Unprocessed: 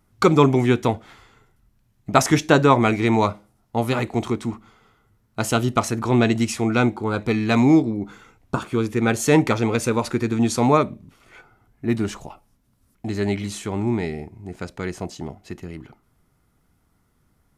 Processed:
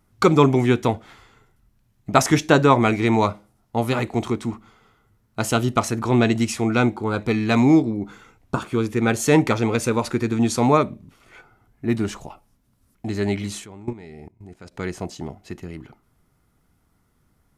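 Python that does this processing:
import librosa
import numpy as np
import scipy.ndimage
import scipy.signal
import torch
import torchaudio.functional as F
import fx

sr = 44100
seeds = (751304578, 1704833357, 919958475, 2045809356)

y = fx.level_steps(x, sr, step_db=20, at=(13.6, 14.75))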